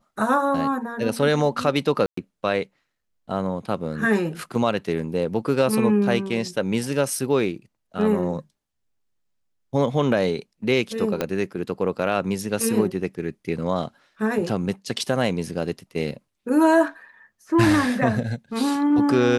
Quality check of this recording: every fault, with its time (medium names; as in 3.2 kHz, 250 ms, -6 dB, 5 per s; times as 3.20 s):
2.06–2.17 s: dropout 114 ms
11.21 s: pop -9 dBFS